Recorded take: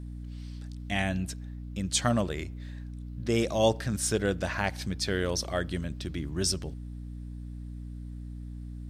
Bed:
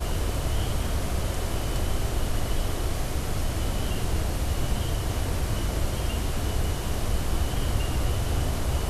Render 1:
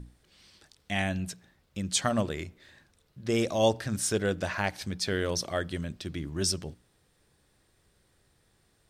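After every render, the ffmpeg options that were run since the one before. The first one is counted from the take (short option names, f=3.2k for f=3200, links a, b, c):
-af "bandreject=f=60:t=h:w=6,bandreject=f=120:t=h:w=6,bandreject=f=180:t=h:w=6,bandreject=f=240:t=h:w=6,bandreject=f=300:t=h:w=6"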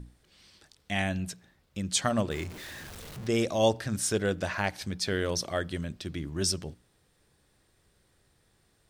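-filter_complex "[0:a]asettb=1/sr,asplit=3[a][b][c];[a]atrim=end=2.314[d];[b]atrim=start=2.31:end=3.27,asetpts=PTS-STARTPTS,afade=t=in:d=0.004:c=qsin,afade=t=out:st=0.956:d=0.004:c=qsin,aeval=exprs='val(0)+0.5*0.0119*sgn(val(0))':c=same[e];[c]atrim=start=3.266[f];[d][e]acrossfade=d=0.004:c1=hsin:c2=qsin[g];[g][f]acrossfade=d=0.004:c1=qsin:c2=hsin"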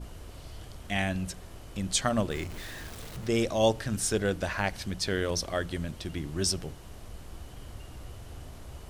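-filter_complex "[1:a]volume=-18dB[a];[0:a][a]amix=inputs=2:normalize=0"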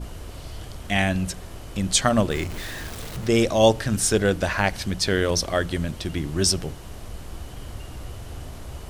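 -af "volume=7.5dB"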